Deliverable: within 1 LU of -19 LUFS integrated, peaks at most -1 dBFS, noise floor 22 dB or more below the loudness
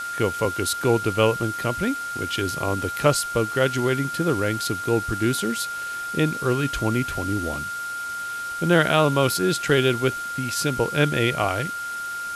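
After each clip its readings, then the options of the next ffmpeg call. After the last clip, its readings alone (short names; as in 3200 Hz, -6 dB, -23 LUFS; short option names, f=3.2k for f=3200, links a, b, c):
steady tone 1400 Hz; tone level -28 dBFS; noise floor -31 dBFS; noise floor target -45 dBFS; loudness -23.0 LUFS; peak -4.5 dBFS; loudness target -19.0 LUFS
-> -af "bandreject=f=1.4k:w=30"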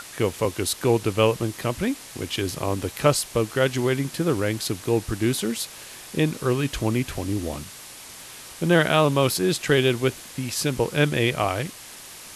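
steady tone none; noise floor -42 dBFS; noise floor target -46 dBFS
-> -af "afftdn=nr=6:nf=-42"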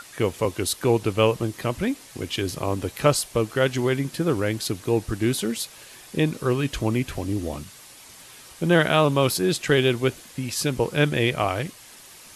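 noise floor -46 dBFS; loudness -24.0 LUFS; peak -5.0 dBFS; loudness target -19.0 LUFS
-> -af "volume=5dB,alimiter=limit=-1dB:level=0:latency=1"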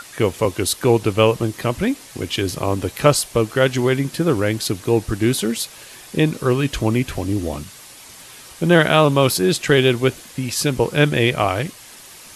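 loudness -19.0 LUFS; peak -1.0 dBFS; noise floor -41 dBFS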